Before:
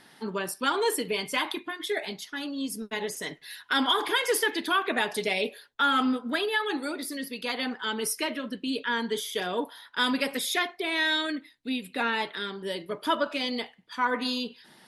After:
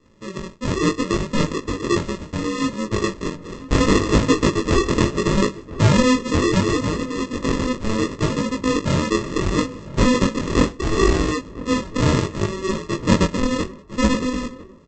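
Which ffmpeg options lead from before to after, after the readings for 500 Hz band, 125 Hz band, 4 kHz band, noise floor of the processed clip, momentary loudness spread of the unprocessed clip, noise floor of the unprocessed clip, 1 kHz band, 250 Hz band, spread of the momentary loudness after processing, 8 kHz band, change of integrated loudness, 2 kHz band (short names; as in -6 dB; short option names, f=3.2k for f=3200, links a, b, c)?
+9.0 dB, +28.5 dB, +0.5 dB, -41 dBFS, 9 LU, -56 dBFS, +3.5 dB, +12.5 dB, 9 LU, +6.5 dB, +8.0 dB, +1.0 dB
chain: -filter_complex "[0:a]lowpass=4.9k,dynaudnorm=f=150:g=11:m=10dB,aresample=16000,acrusher=samples=21:mix=1:aa=0.000001,aresample=44100,flanger=delay=18.5:depth=5.1:speed=0.71,asplit=2[a][b];[b]adelay=1001,lowpass=f=1.4k:p=1,volume=-16dB,asplit=2[c][d];[d]adelay=1001,lowpass=f=1.4k:p=1,volume=0.46,asplit=2[e][f];[f]adelay=1001,lowpass=f=1.4k:p=1,volume=0.46,asplit=2[g][h];[h]adelay=1001,lowpass=f=1.4k:p=1,volume=0.46[i];[a][c][e][g][i]amix=inputs=5:normalize=0,volume=3.5dB"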